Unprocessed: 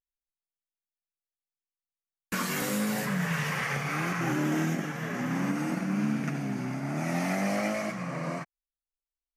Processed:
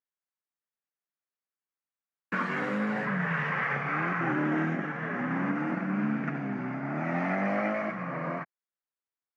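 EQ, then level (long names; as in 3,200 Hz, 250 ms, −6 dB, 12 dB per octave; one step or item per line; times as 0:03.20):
high-pass filter 150 Hz
low-pass with resonance 1,700 Hz, resonance Q 1.5
0.0 dB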